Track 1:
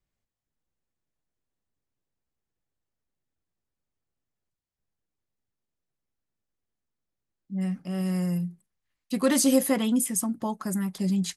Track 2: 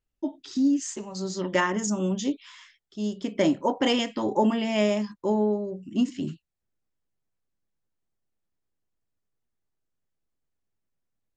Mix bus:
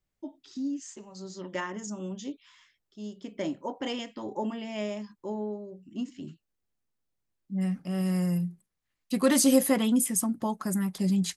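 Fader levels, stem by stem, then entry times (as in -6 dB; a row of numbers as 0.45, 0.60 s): 0.0, -10.0 dB; 0.00, 0.00 s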